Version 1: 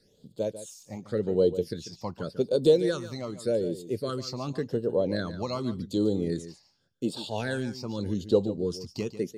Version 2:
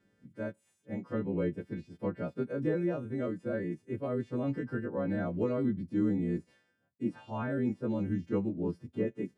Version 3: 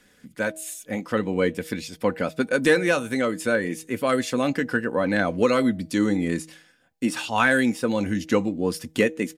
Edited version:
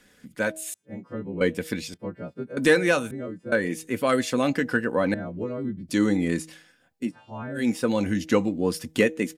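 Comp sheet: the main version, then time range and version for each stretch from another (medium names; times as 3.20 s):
3
0.74–1.41 s: from 2
1.94–2.57 s: from 2
3.11–3.52 s: from 2
5.14–5.89 s: from 2
7.04–7.62 s: from 2, crossfade 0.16 s
not used: 1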